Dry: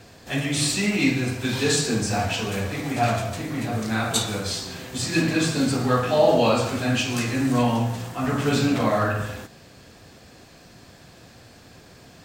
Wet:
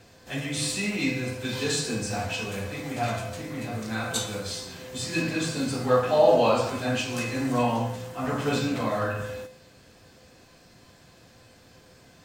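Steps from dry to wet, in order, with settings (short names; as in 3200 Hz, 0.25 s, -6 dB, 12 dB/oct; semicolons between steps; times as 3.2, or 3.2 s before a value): 5.85–8.59 dynamic EQ 750 Hz, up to +6 dB, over -32 dBFS, Q 0.78; resonator 510 Hz, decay 0.43 s, mix 80%; gain +7 dB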